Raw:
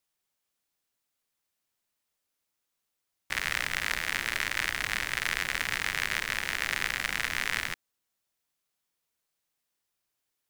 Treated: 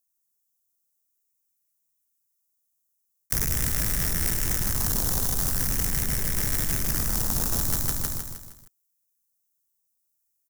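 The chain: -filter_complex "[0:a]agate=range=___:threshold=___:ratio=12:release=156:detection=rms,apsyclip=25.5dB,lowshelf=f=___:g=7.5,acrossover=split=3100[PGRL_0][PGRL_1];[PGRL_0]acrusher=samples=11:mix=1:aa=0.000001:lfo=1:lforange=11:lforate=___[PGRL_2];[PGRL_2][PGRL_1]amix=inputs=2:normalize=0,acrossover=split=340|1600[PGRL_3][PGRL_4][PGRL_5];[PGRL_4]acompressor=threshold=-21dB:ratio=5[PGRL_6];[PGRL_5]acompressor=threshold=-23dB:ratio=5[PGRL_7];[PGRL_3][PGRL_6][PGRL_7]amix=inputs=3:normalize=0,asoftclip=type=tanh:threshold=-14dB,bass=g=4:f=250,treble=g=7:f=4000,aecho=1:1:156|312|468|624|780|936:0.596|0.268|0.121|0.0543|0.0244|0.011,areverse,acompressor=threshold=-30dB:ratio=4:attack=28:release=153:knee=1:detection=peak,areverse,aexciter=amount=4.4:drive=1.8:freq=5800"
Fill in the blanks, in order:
-39dB, -33dB, 190, 0.44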